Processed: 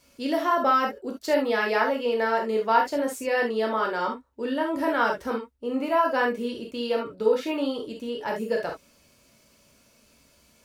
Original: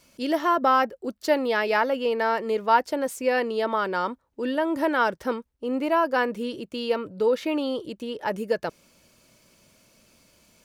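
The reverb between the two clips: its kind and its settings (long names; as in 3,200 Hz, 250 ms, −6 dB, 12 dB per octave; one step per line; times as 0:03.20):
reverb whose tail is shaped and stops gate 90 ms flat, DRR 0 dB
level −3.5 dB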